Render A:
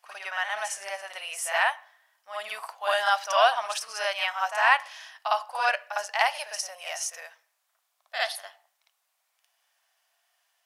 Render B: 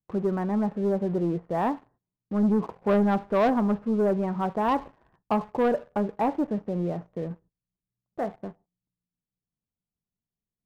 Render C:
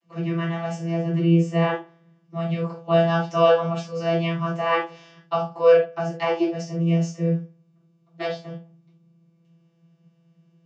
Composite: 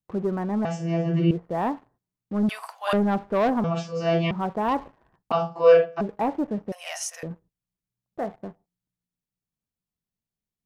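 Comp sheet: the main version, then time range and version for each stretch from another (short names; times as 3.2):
B
0.65–1.31 from C
2.49–2.93 from A
3.64–4.31 from C
5.32–6.01 from C
6.72–7.23 from A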